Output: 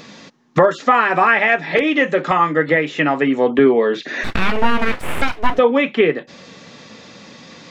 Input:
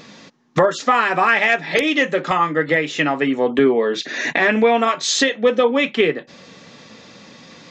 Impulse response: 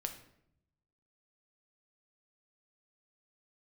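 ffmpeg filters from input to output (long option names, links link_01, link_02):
-filter_complex "[0:a]asplit=3[link_01][link_02][link_03];[link_01]afade=type=out:start_time=4.23:duration=0.02[link_04];[link_02]aeval=exprs='abs(val(0))':channel_layout=same,afade=type=in:start_time=4.23:duration=0.02,afade=type=out:start_time=5.57:duration=0.02[link_05];[link_03]afade=type=in:start_time=5.57:duration=0.02[link_06];[link_04][link_05][link_06]amix=inputs=3:normalize=0,acrossover=split=2800[link_07][link_08];[link_08]acompressor=threshold=-42dB:ratio=4:attack=1:release=60[link_09];[link_07][link_09]amix=inputs=2:normalize=0,volume=2.5dB"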